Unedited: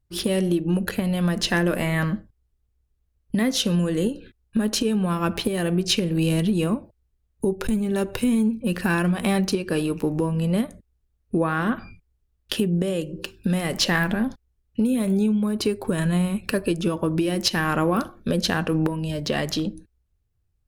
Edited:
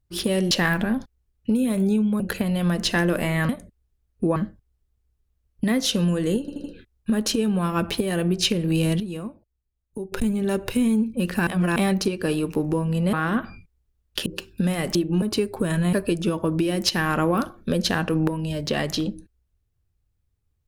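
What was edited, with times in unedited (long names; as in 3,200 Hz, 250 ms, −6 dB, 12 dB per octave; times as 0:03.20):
0:00.51–0:00.78: swap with 0:13.81–0:15.50
0:04.11: stutter 0.08 s, 4 plays
0:06.47–0:07.59: clip gain −9.5 dB
0:08.94–0:09.23: reverse
0:10.60–0:11.47: move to 0:02.07
0:12.60–0:13.12: remove
0:16.21–0:16.52: remove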